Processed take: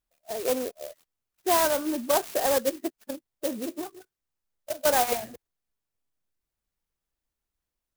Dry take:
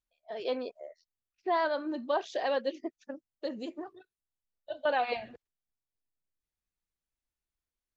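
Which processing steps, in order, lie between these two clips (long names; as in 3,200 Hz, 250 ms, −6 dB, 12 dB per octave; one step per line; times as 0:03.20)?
converter with an unsteady clock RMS 0.1 ms
level +6 dB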